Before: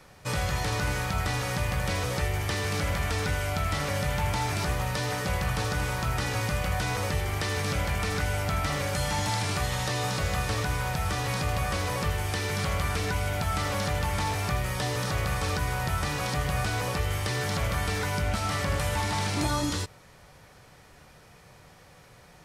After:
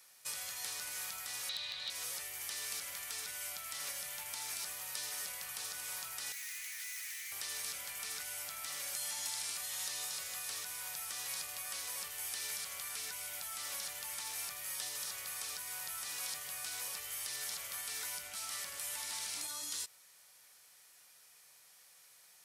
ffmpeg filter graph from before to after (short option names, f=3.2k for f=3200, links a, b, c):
-filter_complex "[0:a]asettb=1/sr,asplit=3[a][b][c];[a]atrim=end=1.494[d];[b]atrim=start=1.49:end=1.9,asetpts=PTS-STARTPTS,afade=t=in:d=0.004:c=qsin,afade=t=out:st=0.406:d=0.004:c=qsin,lowpass=f=3.9k:t=q:w=13,volume=14.5dB,asoftclip=hard,volume=-14.5dB[e];[c]atrim=start=1.896[f];[d][e]acrossfade=d=0.004:c1=hsin:c2=qsin[g];[g][f]acrossfade=d=0.004:c1=qsin:c2=hsin,asettb=1/sr,asplit=3[h][i][j];[h]atrim=end=6.324[k];[i]atrim=start=6.32:end=7.32,asetpts=PTS-STARTPTS,afade=t=in:d=0.004:c=qsin,afade=t=out:st=0.996:d=0.004:c=qsin,highpass=f=2k:t=q:w=5.7,aeval=exprs='(tanh(70.8*val(0)+0.6)-tanh(0.6))/70.8':c=same[l];[j]atrim=start=7.316[m];[k][l]acrossfade=d=0.004:c1=hsin:c2=qsin[n];[n][m]acrossfade=d=0.004:c1=qsin:c2=hsin,equalizer=f=11k:t=o:w=0.86:g=2.5,alimiter=limit=-22dB:level=0:latency=1:release=184,aderivative"